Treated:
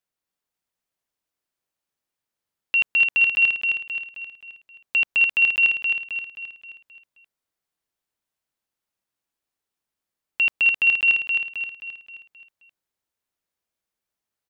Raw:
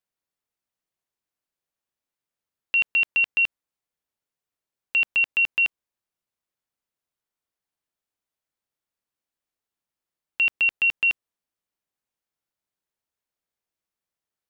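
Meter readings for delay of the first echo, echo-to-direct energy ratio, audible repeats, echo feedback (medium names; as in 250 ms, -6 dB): 264 ms, -3.5 dB, 5, 48%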